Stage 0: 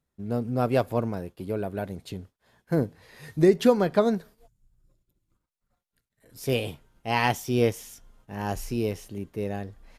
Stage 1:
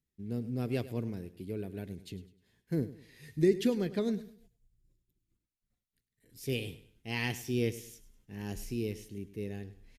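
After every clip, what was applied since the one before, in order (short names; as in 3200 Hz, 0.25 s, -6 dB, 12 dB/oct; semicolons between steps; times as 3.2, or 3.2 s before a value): band shelf 890 Hz -13 dB; feedback echo 0.102 s, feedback 33%, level -16 dB; gain -6.5 dB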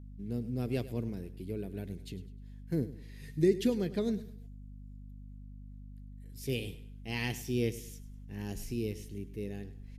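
dynamic EQ 1400 Hz, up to -3 dB, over -48 dBFS, Q 0.71; hum 50 Hz, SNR 11 dB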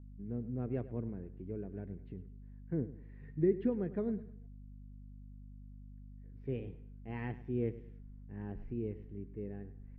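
LPF 1700 Hz 24 dB/oct; gain -3.5 dB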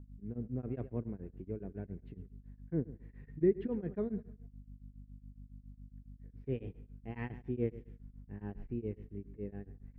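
beating tremolo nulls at 7.2 Hz; gain +2.5 dB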